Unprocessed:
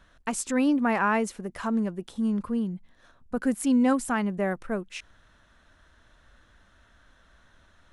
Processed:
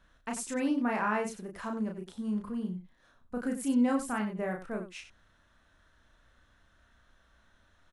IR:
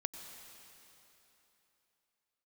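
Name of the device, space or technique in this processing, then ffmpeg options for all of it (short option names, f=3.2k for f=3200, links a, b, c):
slapback doubling: -filter_complex "[0:a]asplit=3[a][b][c];[b]adelay=33,volume=-3dB[d];[c]adelay=94,volume=-10.5dB[e];[a][d][e]amix=inputs=3:normalize=0,volume=-8dB"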